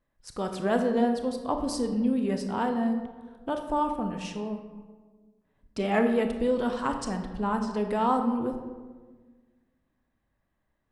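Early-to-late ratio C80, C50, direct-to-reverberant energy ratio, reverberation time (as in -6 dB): 9.0 dB, 7.0 dB, 5.5 dB, 1.4 s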